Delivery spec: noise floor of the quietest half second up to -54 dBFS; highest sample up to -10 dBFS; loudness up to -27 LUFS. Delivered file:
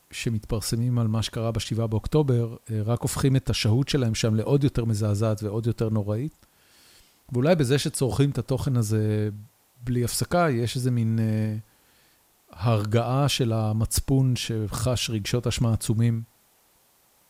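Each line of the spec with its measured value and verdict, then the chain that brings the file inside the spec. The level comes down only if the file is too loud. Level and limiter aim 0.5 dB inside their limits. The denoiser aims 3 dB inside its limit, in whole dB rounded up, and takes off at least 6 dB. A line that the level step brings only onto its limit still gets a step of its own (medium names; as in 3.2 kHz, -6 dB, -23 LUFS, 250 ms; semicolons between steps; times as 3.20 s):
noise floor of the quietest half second -62 dBFS: pass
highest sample -8.0 dBFS: fail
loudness -25.0 LUFS: fail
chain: trim -2.5 dB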